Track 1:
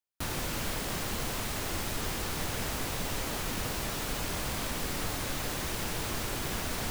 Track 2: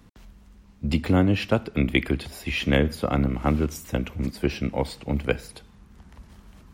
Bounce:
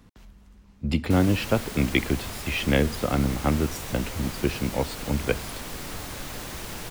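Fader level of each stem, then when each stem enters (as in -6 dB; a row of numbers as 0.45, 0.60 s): -2.0, -1.0 dB; 0.90, 0.00 s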